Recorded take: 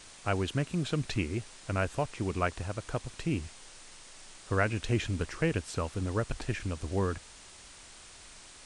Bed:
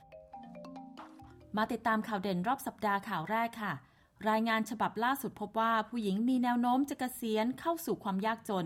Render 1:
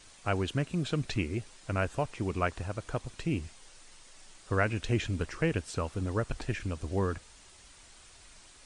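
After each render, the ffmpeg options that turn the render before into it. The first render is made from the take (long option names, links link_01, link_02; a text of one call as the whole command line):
ffmpeg -i in.wav -af "afftdn=noise_reduction=6:noise_floor=-52" out.wav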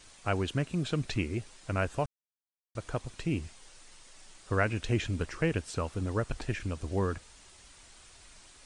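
ffmpeg -i in.wav -filter_complex "[0:a]asplit=3[link_01][link_02][link_03];[link_01]atrim=end=2.06,asetpts=PTS-STARTPTS,afade=type=out:start_time=2.056:duration=0.004:curve=hsin[link_04];[link_02]atrim=start=2.06:end=2.75,asetpts=PTS-STARTPTS,volume=0[link_05];[link_03]atrim=start=2.75,asetpts=PTS-STARTPTS,afade=type=in:duration=0.004:curve=hsin[link_06];[link_04][link_05][link_06]concat=n=3:v=0:a=1" out.wav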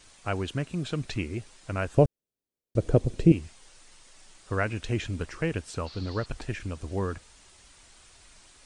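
ffmpeg -i in.wav -filter_complex "[0:a]asettb=1/sr,asplit=3[link_01][link_02][link_03];[link_01]atrim=end=1.974[link_04];[link_02]atrim=start=1.97:end=3.32,asetpts=PTS-STARTPTS,afade=type=in:duration=0.004:curve=qsin,afade=type=out:start_time=1.346:duration=0.004:curve=qsin,lowshelf=frequency=690:width_type=q:width=1.5:gain=13[link_05];[link_03]atrim=start=3.316[link_06];[link_04][link_05]acrossfade=duration=0.004:curve1=hsin:curve2=qsin[link_07];[link_07][link_06]acrossfade=duration=0.004:curve1=qsin:curve2=hsin,asettb=1/sr,asplit=3[link_08][link_09][link_10];[link_08]atrim=end=5.864[link_11];[link_09]atrim=start=5.86:end=6.26,asetpts=PTS-STARTPTS,afade=type=in:duration=0.004:curve=qsin,afade=type=out:start_time=0.396:duration=0.004:curve=qsin,lowpass=frequency=4400:width_type=q:width=9.5[link_12];[link_10]atrim=start=6.256[link_13];[link_11][link_12]acrossfade=duration=0.004:curve1=hsin:curve2=qsin[link_14];[link_14][link_13]acrossfade=duration=0.004:curve1=qsin:curve2=hsin" out.wav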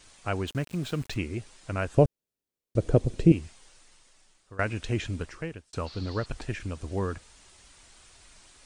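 ffmpeg -i in.wav -filter_complex "[0:a]asettb=1/sr,asplit=3[link_01][link_02][link_03];[link_01]atrim=end=0.474[link_04];[link_02]atrim=start=0.47:end=1.16,asetpts=PTS-STARTPTS,afade=type=in:duration=0.004:curve=qsin,afade=type=out:start_time=0.686:duration=0.004:curve=qsin,aeval=exprs='val(0)*gte(abs(val(0)),0.00708)':channel_layout=same[link_05];[link_03]atrim=start=1.156[link_06];[link_04][link_05]acrossfade=duration=0.004:curve1=hsin:curve2=qsin[link_07];[link_07][link_06]acrossfade=duration=0.004:curve1=qsin:curve2=hsin,asplit=3[link_08][link_09][link_10];[link_08]atrim=end=4.59,asetpts=PTS-STARTPTS,afade=type=out:start_time=3.43:duration=1.16:silence=0.11885[link_11];[link_09]atrim=start=4.59:end=5.73,asetpts=PTS-STARTPTS,afade=type=in:duration=0.004:curve=hsin:silence=0.11885,afade=type=out:start_time=0.53:duration=0.61[link_12];[link_10]atrim=start=5.73,asetpts=PTS-STARTPTS,afade=type=in:duration=0.004:curve=hsin[link_13];[link_11][link_12][link_13]concat=n=3:v=0:a=1" out.wav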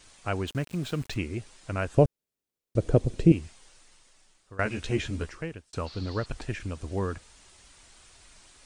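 ffmpeg -i in.wav -filter_complex "[0:a]asettb=1/sr,asplit=3[link_01][link_02][link_03];[link_01]atrim=end=4.644[link_04];[link_02]atrim=start=4.64:end=5.3,asetpts=PTS-STARTPTS,afade=type=in:duration=0.004:curve=qsin,afade=type=out:start_time=0.656:duration=0.004:curve=qsin,asplit=2[link_05][link_06];[link_06]adelay=14,volume=-3dB[link_07];[link_05][link_07]amix=inputs=2:normalize=0,atrim=end_sample=29106[link_08];[link_03]atrim=start=5.296[link_09];[link_04][link_08]acrossfade=duration=0.004:curve1=hsin:curve2=qsin[link_10];[link_10][link_09]acrossfade=duration=0.004:curve1=qsin:curve2=hsin" out.wav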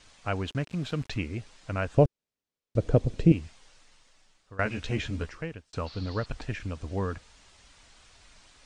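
ffmpeg -i in.wav -af "lowpass=6100,equalizer=frequency=360:width=8:gain=-7.5" out.wav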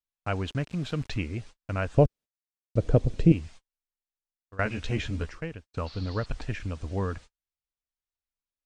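ffmpeg -i in.wav -af "agate=range=-45dB:threshold=-45dB:ratio=16:detection=peak,lowshelf=frequency=62:gain=6" out.wav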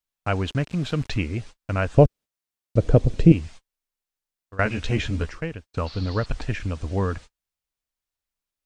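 ffmpeg -i in.wav -af "volume=5.5dB,alimiter=limit=-1dB:level=0:latency=1" out.wav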